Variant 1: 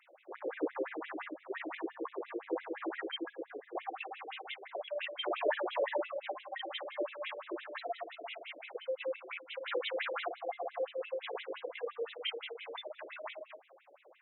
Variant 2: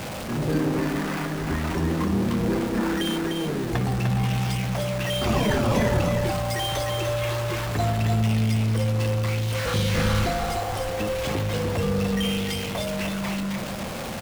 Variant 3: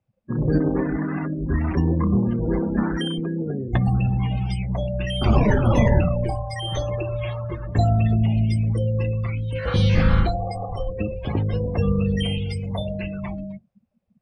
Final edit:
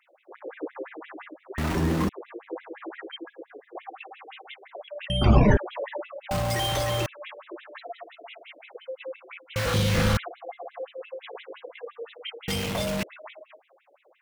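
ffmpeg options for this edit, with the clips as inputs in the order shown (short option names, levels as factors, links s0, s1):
-filter_complex "[1:a]asplit=4[s0][s1][s2][s3];[0:a]asplit=6[s4][s5][s6][s7][s8][s9];[s4]atrim=end=1.582[s10];[s0]atrim=start=1.578:end=2.092[s11];[s5]atrim=start=2.088:end=5.102[s12];[2:a]atrim=start=5.098:end=5.572[s13];[s6]atrim=start=5.568:end=6.312[s14];[s1]atrim=start=6.308:end=7.062[s15];[s7]atrim=start=7.058:end=9.562[s16];[s2]atrim=start=9.558:end=10.172[s17];[s8]atrim=start=10.168:end=12.482[s18];[s3]atrim=start=12.478:end=13.032[s19];[s9]atrim=start=13.028[s20];[s10][s11]acrossfade=d=0.004:c1=hsin:c2=hsin[s21];[s21][s12]acrossfade=d=0.004:c1=hsin:c2=hsin[s22];[s22][s13]acrossfade=d=0.004:c1=hsin:c2=hsin[s23];[s23][s14]acrossfade=d=0.004:c1=hsin:c2=hsin[s24];[s24][s15]acrossfade=d=0.004:c1=hsin:c2=hsin[s25];[s25][s16]acrossfade=d=0.004:c1=hsin:c2=hsin[s26];[s26][s17]acrossfade=d=0.004:c1=hsin:c2=hsin[s27];[s27][s18]acrossfade=d=0.004:c1=hsin:c2=hsin[s28];[s28][s19]acrossfade=d=0.004:c1=hsin:c2=hsin[s29];[s29][s20]acrossfade=d=0.004:c1=hsin:c2=hsin"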